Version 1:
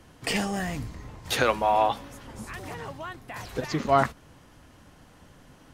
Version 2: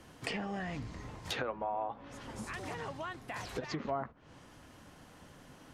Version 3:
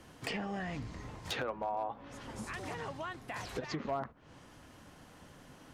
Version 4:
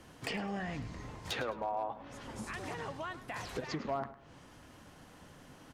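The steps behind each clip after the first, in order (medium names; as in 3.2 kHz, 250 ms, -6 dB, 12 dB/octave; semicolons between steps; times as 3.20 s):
low-pass that closes with the level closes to 1.2 kHz, closed at -21 dBFS; bass shelf 82 Hz -8 dB; compression 3:1, threshold -36 dBFS, peak gain reduction 14.5 dB; trim -1 dB
hard clipper -27 dBFS, distortion -25 dB
feedback delay 105 ms, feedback 28%, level -15 dB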